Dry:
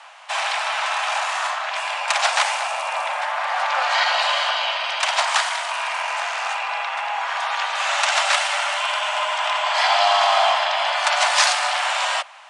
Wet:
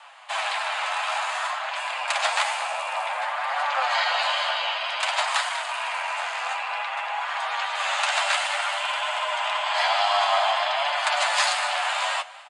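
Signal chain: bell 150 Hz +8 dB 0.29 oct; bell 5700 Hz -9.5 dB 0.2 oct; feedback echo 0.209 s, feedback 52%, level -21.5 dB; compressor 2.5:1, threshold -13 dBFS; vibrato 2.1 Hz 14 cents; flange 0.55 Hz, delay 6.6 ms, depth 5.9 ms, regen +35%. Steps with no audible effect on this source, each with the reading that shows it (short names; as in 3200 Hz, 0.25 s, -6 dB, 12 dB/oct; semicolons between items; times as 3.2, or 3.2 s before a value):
bell 150 Hz: input band starts at 480 Hz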